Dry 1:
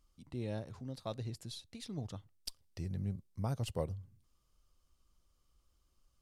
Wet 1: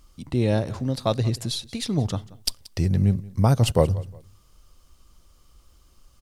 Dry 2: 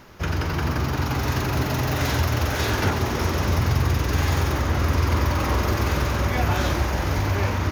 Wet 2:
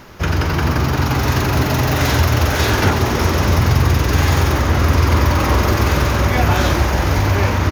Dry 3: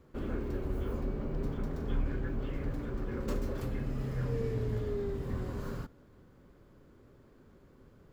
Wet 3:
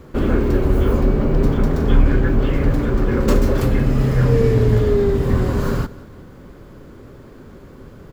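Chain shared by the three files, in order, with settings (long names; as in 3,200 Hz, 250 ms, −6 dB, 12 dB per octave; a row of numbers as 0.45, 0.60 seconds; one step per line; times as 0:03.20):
repeating echo 180 ms, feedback 30%, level −20.5 dB
normalise the peak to −1.5 dBFS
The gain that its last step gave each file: +18.0, +7.5, +18.5 decibels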